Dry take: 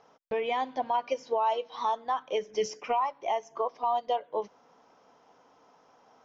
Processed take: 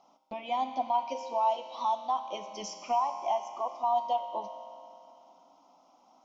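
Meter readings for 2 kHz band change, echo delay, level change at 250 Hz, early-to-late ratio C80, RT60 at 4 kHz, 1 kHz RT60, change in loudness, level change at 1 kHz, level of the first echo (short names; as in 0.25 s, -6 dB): -8.5 dB, none, -1.0 dB, 8.0 dB, 2.7 s, 2.7 s, -1.0 dB, +0.5 dB, none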